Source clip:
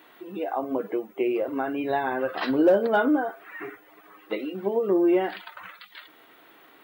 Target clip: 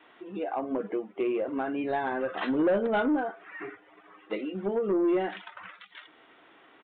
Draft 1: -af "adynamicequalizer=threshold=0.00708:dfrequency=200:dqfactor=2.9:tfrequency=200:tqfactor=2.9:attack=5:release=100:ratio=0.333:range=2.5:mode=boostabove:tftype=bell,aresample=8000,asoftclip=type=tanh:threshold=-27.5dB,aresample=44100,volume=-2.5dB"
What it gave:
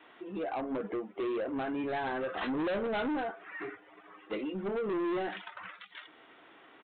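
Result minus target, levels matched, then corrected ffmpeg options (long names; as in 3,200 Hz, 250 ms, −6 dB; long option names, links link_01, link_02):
soft clipping: distortion +9 dB
-af "adynamicequalizer=threshold=0.00708:dfrequency=200:dqfactor=2.9:tfrequency=200:tqfactor=2.9:attack=5:release=100:ratio=0.333:range=2.5:mode=boostabove:tftype=bell,aresample=8000,asoftclip=type=tanh:threshold=-17dB,aresample=44100,volume=-2.5dB"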